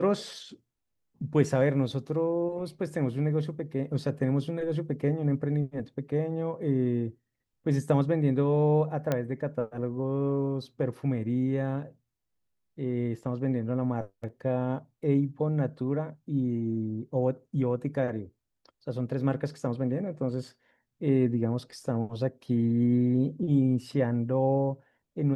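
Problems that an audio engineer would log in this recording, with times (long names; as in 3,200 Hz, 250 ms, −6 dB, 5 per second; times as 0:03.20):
0:09.12: click −14 dBFS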